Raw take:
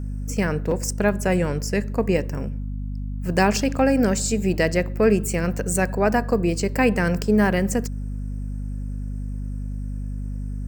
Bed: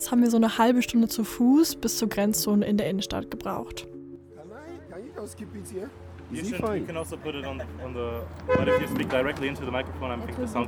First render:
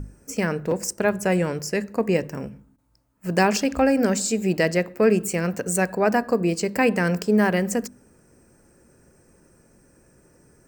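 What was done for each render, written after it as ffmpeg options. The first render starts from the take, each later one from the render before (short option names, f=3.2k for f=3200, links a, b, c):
-af "bandreject=f=50:t=h:w=6,bandreject=f=100:t=h:w=6,bandreject=f=150:t=h:w=6,bandreject=f=200:t=h:w=6,bandreject=f=250:t=h:w=6"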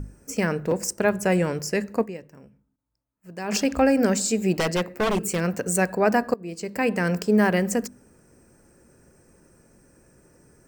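-filter_complex "[0:a]asettb=1/sr,asplit=3[a][b][c];[a]atrim=end=4.544[d];[b]atrim=start=4.54:end=5.41,asetpts=PTS-STARTPTS,afade=t=in:d=0.004:c=qsin,afade=t=out:st=0.866:d=0.004:c=qsin,aeval=exprs='0.141*(abs(mod(val(0)/0.141+3,4)-2)-1)':c=same[e];[c]atrim=start=5.406[f];[d][e]acrossfade=d=0.004:c1=hsin:c2=qsin[g];[g][f]acrossfade=d=0.004:c1=qsin:c2=hsin,asplit=4[h][i][j][k];[h]atrim=end=2.39,asetpts=PTS-STARTPTS,afade=t=out:st=2.02:d=0.37:c=exp:silence=0.149624[l];[i]atrim=start=2.39:end=3.16,asetpts=PTS-STARTPTS,volume=-16.5dB[m];[j]atrim=start=3.16:end=6.34,asetpts=PTS-STARTPTS,afade=t=in:d=0.37:c=exp:silence=0.149624,afade=t=out:st=3.176:d=0.004:c=hsin:silence=0.0749894[n];[k]atrim=start=6.34,asetpts=PTS-STARTPTS,afade=t=in:d=1.2:c=qsin:silence=0.0749894[o];[l][m][n][o]concat=n=4:v=0:a=1"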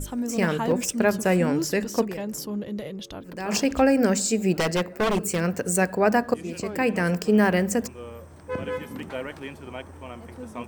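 -filter_complex "[1:a]volume=-8dB[a];[0:a][a]amix=inputs=2:normalize=0"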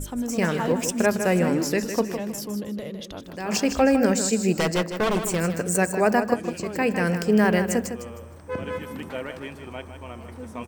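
-af "aecho=1:1:156|312|468:0.355|0.103|0.0298"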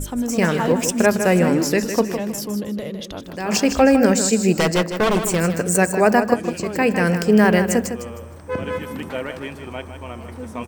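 -af "volume=5dB"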